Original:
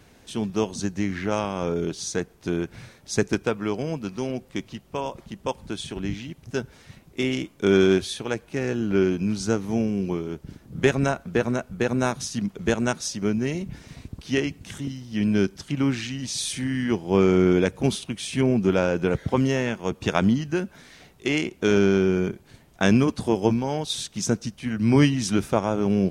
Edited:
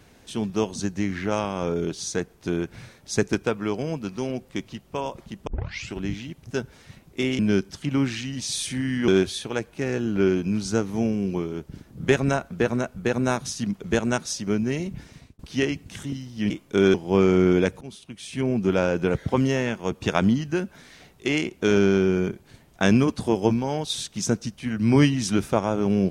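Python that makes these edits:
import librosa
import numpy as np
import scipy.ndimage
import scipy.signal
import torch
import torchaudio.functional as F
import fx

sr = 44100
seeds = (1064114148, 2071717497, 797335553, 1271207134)

y = fx.edit(x, sr, fx.tape_start(start_s=5.47, length_s=0.48),
    fx.swap(start_s=7.39, length_s=0.44, other_s=15.25, other_length_s=1.69),
    fx.fade_out_span(start_s=13.63, length_s=0.51, curve='qsin'),
    fx.fade_in_from(start_s=17.81, length_s=1.02, floor_db=-22.0), tone=tone)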